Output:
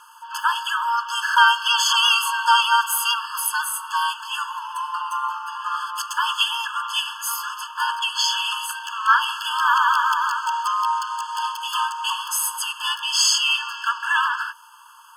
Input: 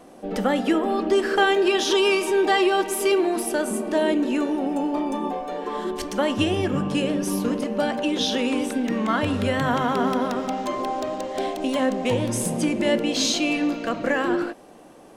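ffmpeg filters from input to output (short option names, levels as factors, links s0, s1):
-filter_complex "[0:a]asplit=2[s0][s1];[s1]asetrate=52444,aresample=44100,atempo=0.840896,volume=0.891[s2];[s0][s2]amix=inputs=2:normalize=0,afftfilt=real='re*eq(mod(floor(b*sr/1024/870),2),1)':imag='im*eq(mod(floor(b*sr/1024/870),2),1)':win_size=1024:overlap=0.75,volume=2.24"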